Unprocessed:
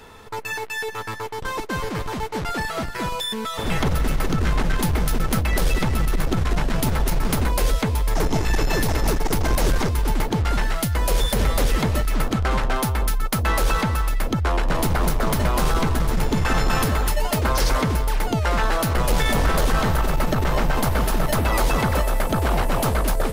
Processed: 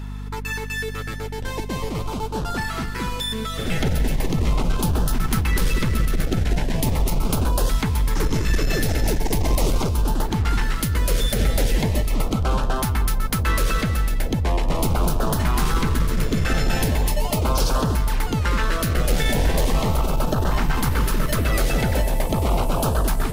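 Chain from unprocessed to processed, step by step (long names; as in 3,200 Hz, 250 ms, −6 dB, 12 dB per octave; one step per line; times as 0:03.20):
auto-filter notch saw up 0.39 Hz 500–2,300 Hz
hum with harmonics 50 Hz, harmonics 5, −31 dBFS −6 dB per octave
0:19.58–0:20.78: hard clipping −12.5 dBFS, distortion −44 dB
echo with a time of its own for lows and highs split 820 Hz, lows 612 ms, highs 139 ms, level −15 dB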